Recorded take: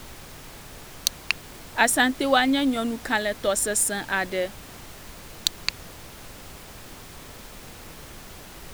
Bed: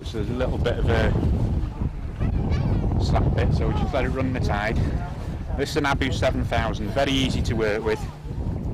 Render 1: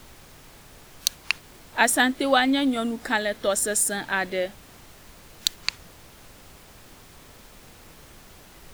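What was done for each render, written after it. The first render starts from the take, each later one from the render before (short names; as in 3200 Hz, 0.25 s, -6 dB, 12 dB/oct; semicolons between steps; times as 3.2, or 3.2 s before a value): noise print and reduce 6 dB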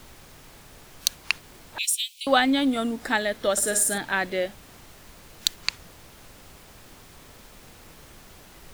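1.78–2.27 steep high-pass 2400 Hz 96 dB/oct; 3.52–3.98 flutter echo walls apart 9.3 m, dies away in 0.39 s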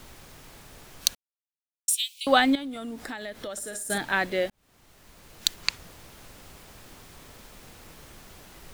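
1.15–1.88 mute; 2.55–3.9 compressor, threshold -33 dBFS; 4.5–5.58 fade in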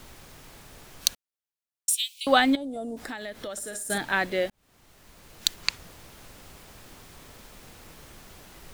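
2.56–2.97 EQ curve 300 Hz 0 dB, 630 Hz +9 dB, 1200 Hz -13 dB, 2300 Hz -18 dB, 8900 Hz 0 dB, 15000 Hz -13 dB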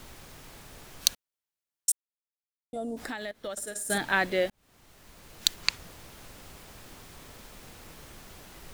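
1.92–2.73 mute; 3.31–3.79 gate -38 dBFS, range -15 dB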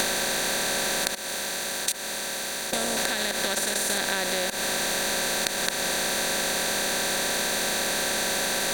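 per-bin compression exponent 0.2; compressor, threshold -23 dBFS, peak gain reduction 11.5 dB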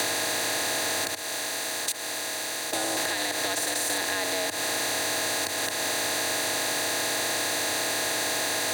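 frequency shift +92 Hz; soft clip -19 dBFS, distortion -18 dB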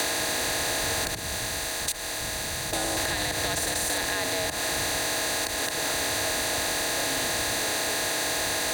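add bed -18.5 dB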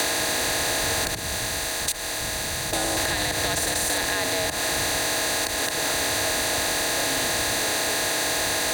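gain +3 dB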